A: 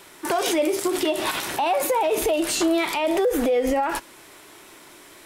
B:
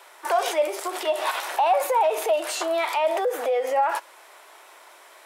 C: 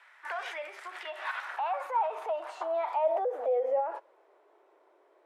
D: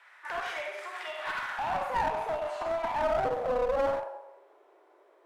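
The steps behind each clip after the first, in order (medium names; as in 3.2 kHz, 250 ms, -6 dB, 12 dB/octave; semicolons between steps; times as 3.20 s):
high-pass 600 Hz 24 dB/octave; tilt shelf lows +6 dB, about 1.5 kHz
band-pass sweep 1.8 kHz -> 390 Hz, 1.06–4.40 s; trim -2.5 dB
Schroeder reverb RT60 0.85 s, combs from 31 ms, DRR 0 dB; one-sided clip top -31 dBFS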